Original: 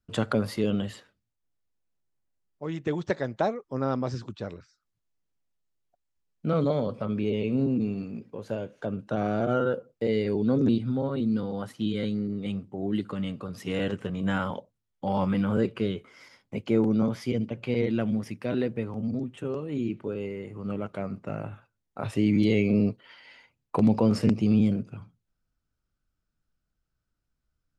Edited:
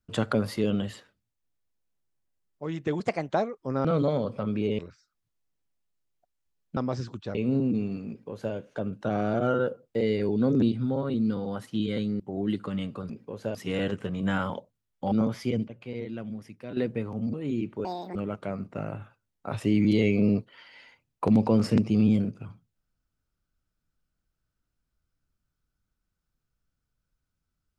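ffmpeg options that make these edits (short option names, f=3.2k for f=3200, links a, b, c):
-filter_complex "[0:a]asplit=16[a][b][c][d][e][f][g][h][i][j][k][l][m][n][o][p];[a]atrim=end=3.004[q];[b]atrim=start=3:end=3.35,asetpts=PTS-STARTPTS,asetrate=53802,aresample=44100[r];[c]atrim=start=3.346:end=3.912[s];[d]atrim=start=6.468:end=7.412[t];[e]atrim=start=4.488:end=6.472[u];[f]atrim=start=3.908:end=4.492[v];[g]atrim=start=7.408:end=12.262[w];[h]atrim=start=12.648:end=13.552[x];[i]atrim=start=8.148:end=8.602[y];[j]atrim=start=13.548:end=15.122[z];[k]atrim=start=16.928:end=17.492[aa];[l]atrim=start=17.488:end=18.582,asetpts=PTS-STARTPTS,volume=-9.5dB[ab];[m]atrim=start=18.578:end=19.152[ac];[n]atrim=start=19.608:end=20.124[ad];[o]atrim=start=20.12:end=20.67,asetpts=PTS-STARTPTS,asetrate=78939,aresample=44100,atrim=end_sample=13550,asetpts=PTS-STARTPTS[ae];[p]atrim=start=20.666[af];[q][r]acrossfade=d=0.004:c1=hsin:c2=hsin[ag];[ag][s]acrossfade=d=0.004:c1=hsin:c2=hsin[ah];[ah][t]acrossfade=d=0.004:c1=hsin:c2=hsin[ai];[ai][u]acrossfade=d=0.004:c1=hsin:c2=hsin[aj];[aj][v]acrossfade=d=0.004:c1=hsin:c2=hsin[ak];[ak][w]acrossfade=d=0.004:c1=hsin:c2=hsin[al];[al][x]acrossfade=d=0.004:c1=hsin:c2=hsin[am];[am][y]acrossfade=d=0.004:c1=hsin:c2=hsin[an];[an][z]acrossfade=d=0.004:c1=hsin:c2=hsin[ao];[ao][aa]acrossfade=d=0.004:c1=hsin:c2=hsin[ap];[ap][ab]acrossfade=d=0.004:c1=hsin:c2=hsin[aq];[aq][ac]acrossfade=d=0.004:c1=hsin:c2=hsin[ar];[ar][ad]acrossfade=d=0.004:c1=hsin:c2=hsin[as];[as][ae]acrossfade=d=0.004:c1=hsin:c2=hsin[at];[at][af]acrossfade=d=0.004:c1=hsin:c2=hsin"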